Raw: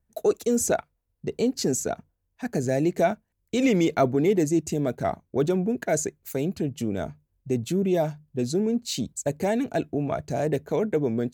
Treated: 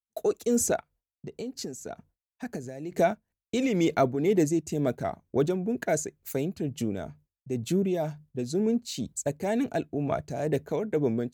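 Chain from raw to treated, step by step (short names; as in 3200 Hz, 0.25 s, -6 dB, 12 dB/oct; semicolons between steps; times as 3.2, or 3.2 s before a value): expander -47 dBFS; 0.78–2.92 compressor 6:1, threshold -31 dBFS, peak gain reduction 11.5 dB; tremolo triangle 2.1 Hz, depth 55%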